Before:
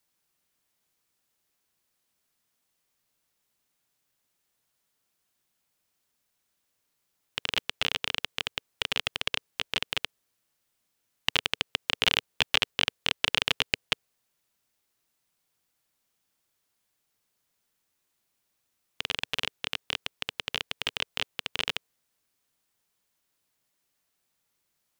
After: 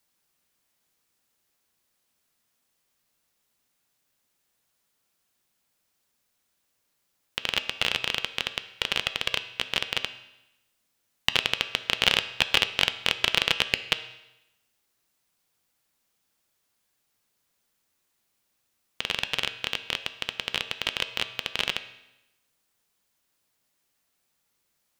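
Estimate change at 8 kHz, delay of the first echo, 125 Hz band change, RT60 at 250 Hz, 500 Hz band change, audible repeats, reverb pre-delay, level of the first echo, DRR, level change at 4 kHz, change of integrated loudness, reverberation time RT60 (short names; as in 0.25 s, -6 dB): +2.5 dB, none, +2.5 dB, 1.0 s, +3.0 dB, none, 3 ms, none, 9.5 dB, +3.0 dB, +3.0 dB, 0.95 s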